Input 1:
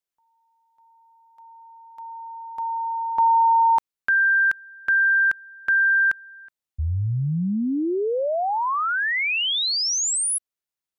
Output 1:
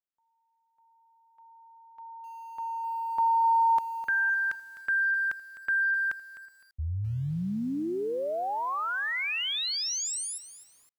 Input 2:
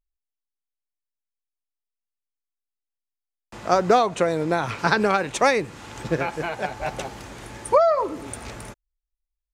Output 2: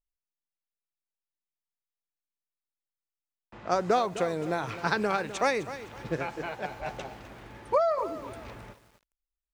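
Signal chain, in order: level-controlled noise filter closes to 2.5 kHz, open at -17.5 dBFS; bit-crushed delay 256 ms, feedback 35%, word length 7-bit, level -13 dB; trim -7.5 dB

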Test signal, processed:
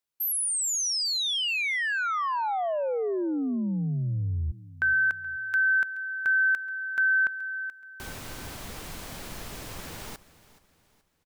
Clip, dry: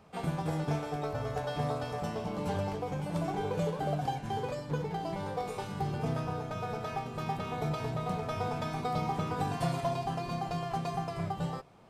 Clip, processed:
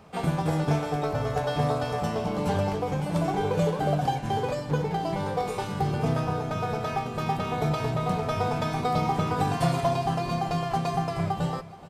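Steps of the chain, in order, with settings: feedback delay 426 ms, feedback 41%, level -18.5 dB; trim +7 dB

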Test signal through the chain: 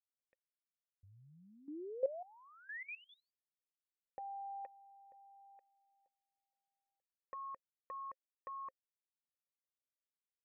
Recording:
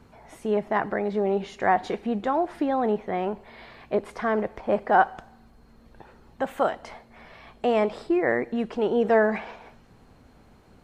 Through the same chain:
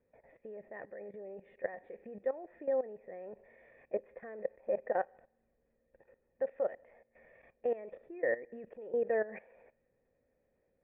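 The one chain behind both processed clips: cascade formant filter e; distance through air 110 m; level held to a coarse grid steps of 16 dB; trim +2.5 dB

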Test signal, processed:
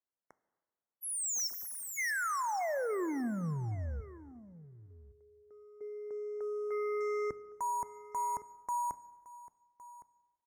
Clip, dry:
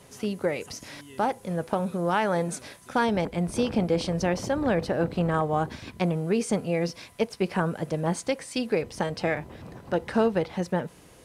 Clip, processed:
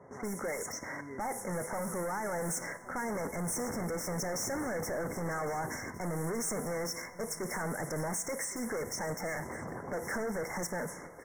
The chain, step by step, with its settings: level-controlled noise filter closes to 810 Hz, open at -24.5 dBFS; high-pass 43 Hz 24 dB/octave; tilt EQ +3 dB/octave; in parallel at +2 dB: level held to a coarse grid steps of 19 dB; on the sum: waveshaping leveller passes 1; peak limiter -19.5 dBFS; saturation -37.5 dBFS; brick-wall FIR band-stop 2.2–5.3 kHz; on a send: delay 1112 ms -18 dB; on the sum: plate-style reverb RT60 1.4 s, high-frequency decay 0.75×, DRR 14.5 dB; trim +4.5 dB

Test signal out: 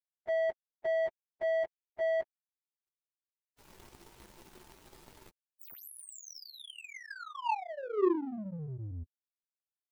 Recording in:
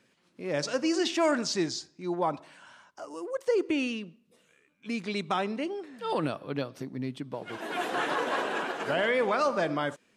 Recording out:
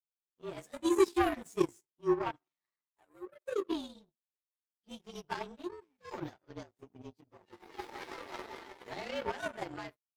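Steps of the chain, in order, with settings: frequency axis rescaled in octaves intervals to 113%; small resonant body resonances 370/890 Hz, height 10 dB, ringing for 45 ms; power-law waveshaper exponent 2

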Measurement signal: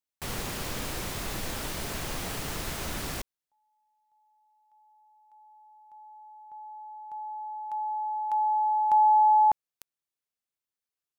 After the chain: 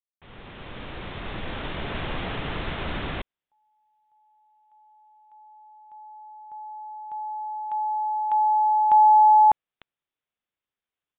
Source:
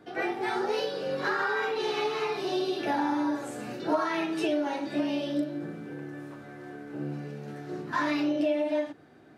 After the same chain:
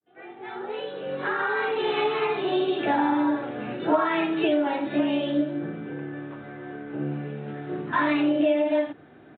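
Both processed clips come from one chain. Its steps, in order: fade-in on the opening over 1.99 s; resampled via 8 kHz; trim +5 dB

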